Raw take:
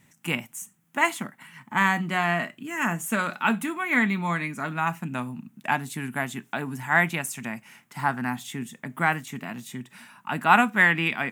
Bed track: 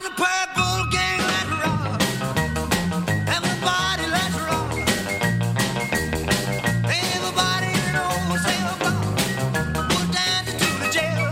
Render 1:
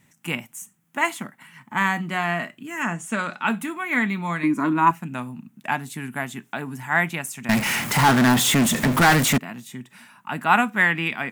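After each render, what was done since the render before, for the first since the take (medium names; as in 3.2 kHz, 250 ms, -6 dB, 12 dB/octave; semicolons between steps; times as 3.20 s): 2.82–3.48 s: Savitzky-Golay filter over 9 samples; 4.43–4.91 s: small resonant body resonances 310/1000 Hz, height 18 dB; 7.49–9.38 s: power-law waveshaper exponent 0.35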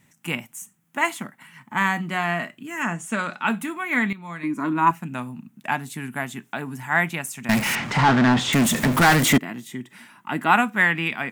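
4.13–4.96 s: fade in, from -14 dB; 7.75–8.53 s: distance through air 130 m; 9.22–10.51 s: small resonant body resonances 330/2000/3200 Hz, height 9 dB, ringing for 25 ms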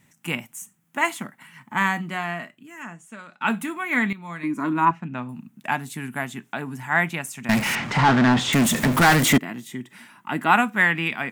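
1.84–3.41 s: fade out quadratic, to -16 dB; 4.85–5.29 s: distance through air 170 m; 6.26–8.05 s: treble shelf 8.6 kHz -4.5 dB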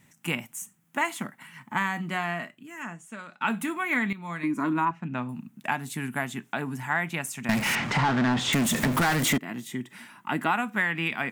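compression 4:1, threshold -23 dBFS, peak gain reduction 10 dB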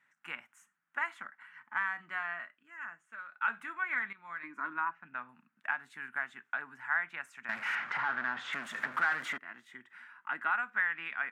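band-pass filter 1.5 kHz, Q 3.5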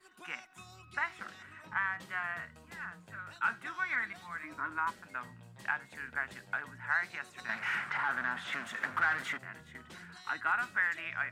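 add bed track -32 dB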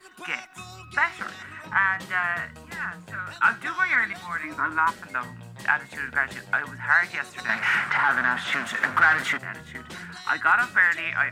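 trim +11.5 dB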